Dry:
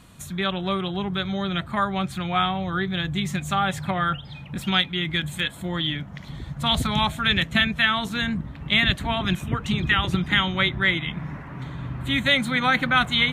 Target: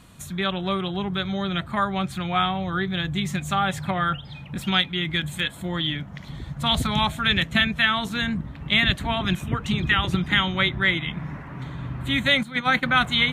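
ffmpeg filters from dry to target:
ffmpeg -i in.wav -filter_complex "[0:a]asettb=1/sr,asplit=3[link_01][link_02][link_03];[link_01]atrim=end=12.434[link_04];[link_02]atrim=start=12.43:end=12.83,asetpts=PTS-STARTPTS,afade=type=in:duration=0.004:curve=qsin,afade=type=out:start_time=0.396:duration=0.004:curve=qsin,agate=range=-12dB:threshold=-21dB:ratio=16:detection=peak[link_05];[link_03]atrim=start=12.826[link_06];[link_04][link_05]acrossfade=duration=0.004:curve1=hsin:curve2=qsin[link_07];[link_07][link_06]acrossfade=duration=0.004:curve1=qsin:curve2=hsin" out.wav

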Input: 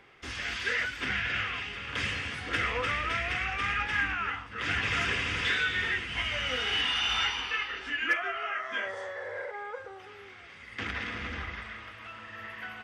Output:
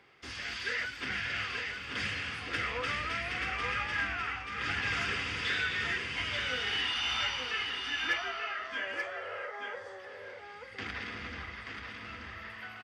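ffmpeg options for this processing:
ffmpeg -i in.wav -filter_complex "[0:a]highpass=62,equalizer=frequency=4700:width_type=o:width=0.27:gain=7,asplit=2[link_01][link_02];[link_02]aecho=0:1:883:0.562[link_03];[link_01][link_03]amix=inputs=2:normalize=0,volume=-4.5dB" out.wav

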